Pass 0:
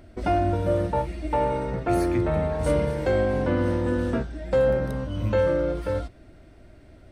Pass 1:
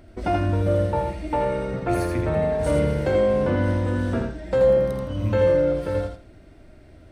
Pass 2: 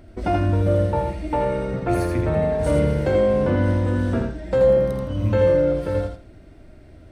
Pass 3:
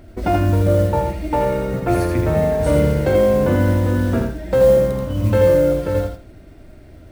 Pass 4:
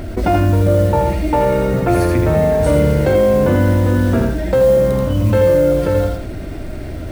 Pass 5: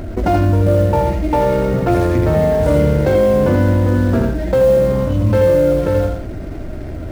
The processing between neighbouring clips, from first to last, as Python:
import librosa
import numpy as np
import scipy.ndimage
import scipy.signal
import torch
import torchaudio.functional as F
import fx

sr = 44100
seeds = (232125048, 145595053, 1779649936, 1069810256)

y1 = fx.echo_feedback(x, sr, ms=82, feedback_pct=22, wet_db=-4)
y2 = fx.low_shelf(y1, sr, hz=460.0, db=3.0)
y3 = fx.mod_noise(y2, sr, seeds[0], snr_db=28)
y3 = F.gain(torch.from_numpy(y3), 3.5).numpy()
y4 = fx.env_flatten(y3, sr, amount_pct=50)
y5 = scipy.ndimage.median_filter(y4, 15, mode='constant')